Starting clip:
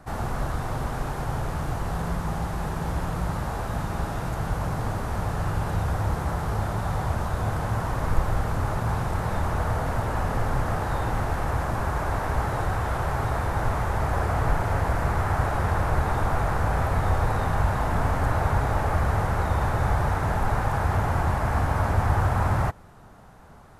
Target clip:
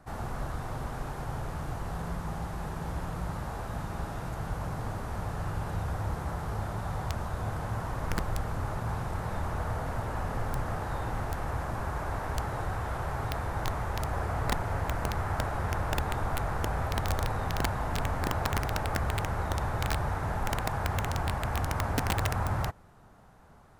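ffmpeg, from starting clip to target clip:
-af "aeval=exprs='(mod(4.73*val(0)+1,2)-1)/4.73':c=same,volume=-7dB"

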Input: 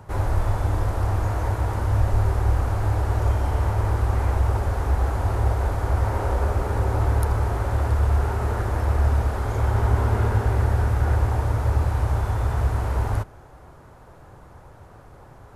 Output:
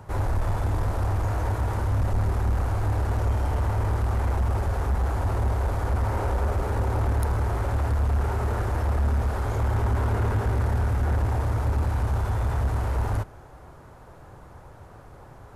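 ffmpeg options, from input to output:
-af "asoftclip=type=tanh:threshold=-18dB"

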